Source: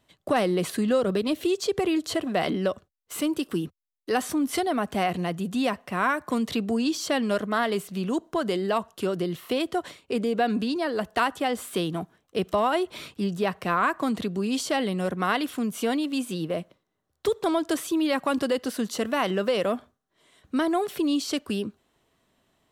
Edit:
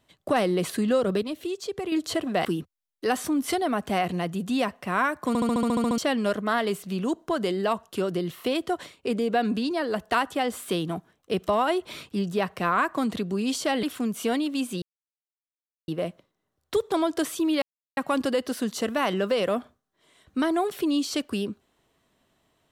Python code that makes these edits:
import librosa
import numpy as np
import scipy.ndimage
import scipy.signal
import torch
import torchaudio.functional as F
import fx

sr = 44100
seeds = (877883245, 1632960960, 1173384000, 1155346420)

y = fx.edit(x, sr, fx.clip_gain(start_s=1.23, length_s=0.69, db=-6.5),
    fx.cut(start_s=2.45, length_s=1.05),
    fx.stutter_over(start_s=6.33, slice_s=0.07, count=10),
    fx.cut(start_s=14.88, length_s=0.53),
    fx.insert_silence(at_s=16.4, length_s=1.06),
    fx.insert_silence(at_s=18.14, length_s=0.35), tone=tone)